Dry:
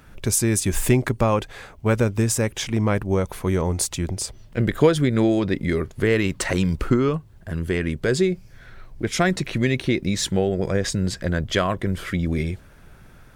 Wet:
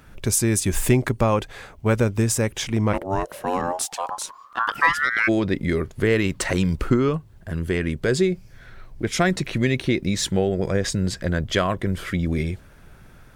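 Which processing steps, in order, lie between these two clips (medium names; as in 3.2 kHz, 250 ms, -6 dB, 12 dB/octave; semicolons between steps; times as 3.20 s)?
2.92–5.27 s: ring modulator 430 Hz -> 1.9 kHz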